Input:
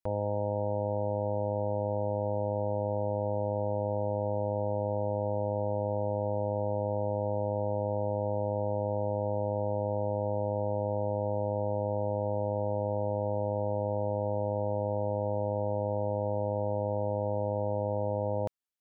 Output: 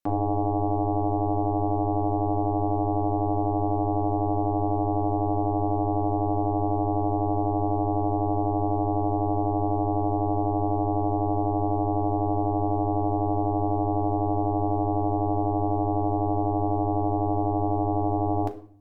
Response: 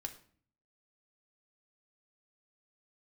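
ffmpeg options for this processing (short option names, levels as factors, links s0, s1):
-filter_complex "[0:a]aeval=exprs='val(0)*sin(2*PI*200*n/s)':c=same[s0];[1:a]atrim=start_sample=2205,asetrate=42777,aresample=44100[s1];[s0][s1]afir=irnorm=-1:irlink=0,volume=2.82"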